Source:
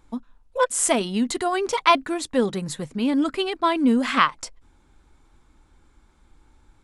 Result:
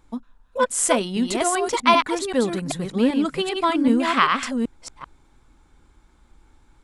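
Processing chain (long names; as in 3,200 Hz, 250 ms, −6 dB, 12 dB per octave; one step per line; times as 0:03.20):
delay that plays each chunk backwards 388 ms, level −4 dB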